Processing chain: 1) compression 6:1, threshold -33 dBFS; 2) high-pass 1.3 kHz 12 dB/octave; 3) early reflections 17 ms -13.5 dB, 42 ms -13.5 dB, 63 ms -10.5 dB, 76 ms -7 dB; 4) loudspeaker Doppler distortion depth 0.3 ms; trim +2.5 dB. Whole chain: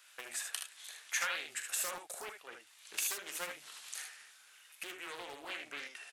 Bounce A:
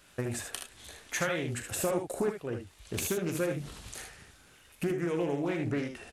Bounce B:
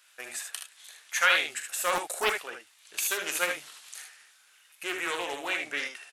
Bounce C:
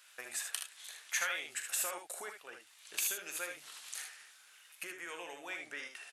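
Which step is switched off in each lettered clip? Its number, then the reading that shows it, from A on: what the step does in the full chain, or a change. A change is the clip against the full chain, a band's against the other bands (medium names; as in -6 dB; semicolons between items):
2, 250 Hz band +24.0 dB; 1, mean gain reduction 9.0 dB; 4, 4 kHz band -1.5 dB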